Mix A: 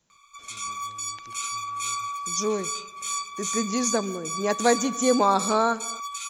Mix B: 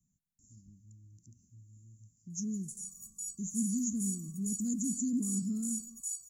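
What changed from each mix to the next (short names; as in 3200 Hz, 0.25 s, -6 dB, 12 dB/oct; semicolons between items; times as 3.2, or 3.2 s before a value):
background: entry +2.20 s; master: add inverse Chebyshev band-stop 510–3700 Hz, stop band 50 dB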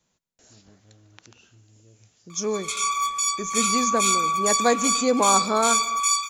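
background +8.5 dB; master: remove inverse Chebyshev band-stop 510–3700 Hz, stop band 50 dB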